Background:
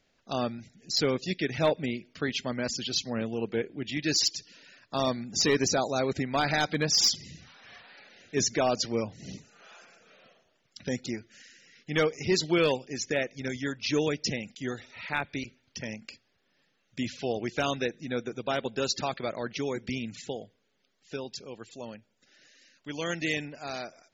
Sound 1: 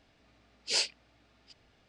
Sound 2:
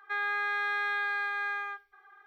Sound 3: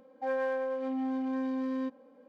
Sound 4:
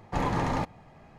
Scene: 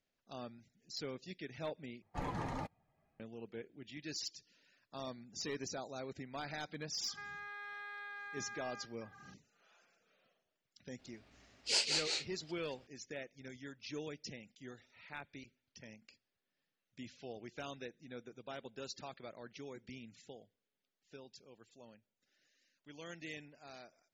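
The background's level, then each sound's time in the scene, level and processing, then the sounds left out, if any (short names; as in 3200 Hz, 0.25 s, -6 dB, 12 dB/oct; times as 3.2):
background -17 dB
2.02 replace with 4 -10.5 dB + per-bin expansion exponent 1.5
7.08 add 2 -2.5 dB + compressor 2.5:1, threshold -49 dBFS
10.99 add 1 -3.5 dB + echoes that change speed 0.136 s, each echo -1 st, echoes 2
not used: 3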